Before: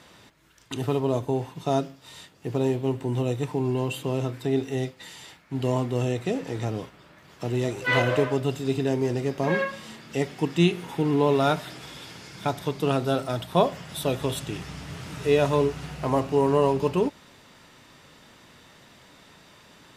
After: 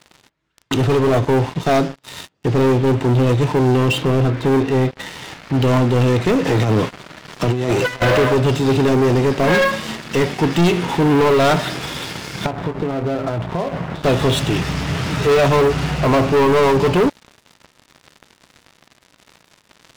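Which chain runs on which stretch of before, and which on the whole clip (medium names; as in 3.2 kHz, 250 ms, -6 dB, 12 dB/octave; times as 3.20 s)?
3.98–5.54 s: upward compressor, threshold -34 dBFS + distance through air 230 m
6.45–8.02 s: high-pass 93 Hz 24 dB/octave + compressor with a negative ratio -30 dBFS, ratio -0.5
12.46–14.04 s: doubling 18 ms -9 dB + compression 16:1, threshold -32 dBFS + low-pass 1.3 kHz
whole clip: Bessel low-pass 4.8 kHz; waveshaping leveller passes 5; trim -1.5 dB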